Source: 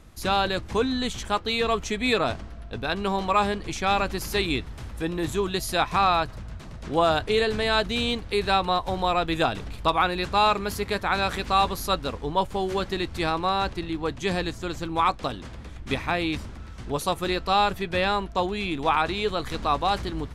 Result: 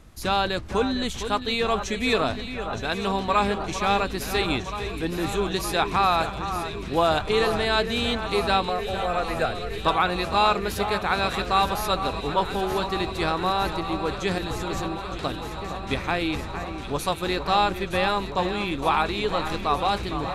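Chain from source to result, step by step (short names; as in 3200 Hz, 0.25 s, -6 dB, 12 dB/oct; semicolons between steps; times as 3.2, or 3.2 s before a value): 8.69–9.72 fixed phaser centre 950 Hz, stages 6; 14.38–15.22 negative-ratio compressor -33 dBFS, ratio -1; echo with dull and thin repeats by turns 0.458 s, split 2400 Hz, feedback 87%, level -9.5 dB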